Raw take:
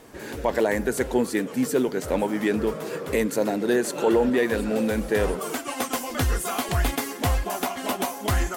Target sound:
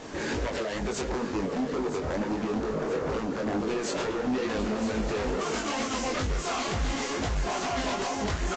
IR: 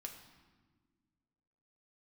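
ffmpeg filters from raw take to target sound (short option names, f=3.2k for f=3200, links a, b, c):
-filter_complex "[0:a]asettb=1/sr,asplit=3[a][b][c];[a]atrim=end=1.094[d];[b]atrim=start=1.09:end=3.67,asetpts=PTS-STARTPTS,afade=t=in:d=0.004:c=qsin,afade=t=out:st=2.576:d=0.004:c=qsin,lowpass=1.3k[e];[c]atrim=start=3.666[f];[d][e]acrossfade=d=0.004:c1=hsin:c2=qsin[g];[g][f]acrossfade=d=0.004:c1=qsin:c2=hsin,alimiter=limit=-20.5dB:level=0:latency=1:release=70,acompressor=threshold=-32dB:ratio=2.5,acrusher=bits=4:mode=log:mix=0:aa=0.000001,aeval=exprs='0.0668*sin(PI/2*2.24*val(0)/0.0668)':c=same,flanger=delay=18.5:depth=5.4:speed=2.2,aecho=1:1:971|1942|2913|3884:0.316|0.133|0.0558|0.0234" -ar 16000 -c:a libvorbis -b:a 48k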